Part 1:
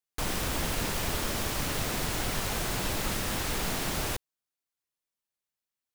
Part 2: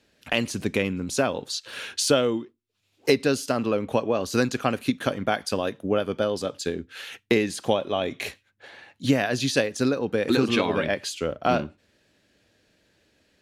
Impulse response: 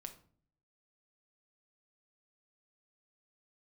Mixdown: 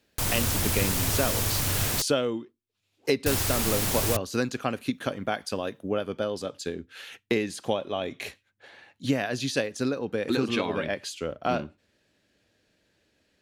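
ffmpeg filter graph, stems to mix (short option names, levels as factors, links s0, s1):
-filter_complex "[0:a]aemphasis=mode=production:type=cd,equalizer=f=100:w=3:g=14,volume=1,asplit=3[s0][s1][s2];[s0]atrim=end=2.02,asetpts=PTS-STARTPTS,afade=t=out:st=2.016:d=0.004:c=hsin[s3];[s1]atrim=start=2.02:end=3.26,asetpts=PTS-STARTPTS,volume=0[s4];[s2]atrim=start=3.26,asetpts=PTS-STARTPTS,afade=t=in:d=0.004:c=hsin[s5];[s3][s4][s5]concat=n=3:v=0:a=1[s6];[1:a]volume=0.596[s7];[s6][s7]amix=inputs=2:normalize=0"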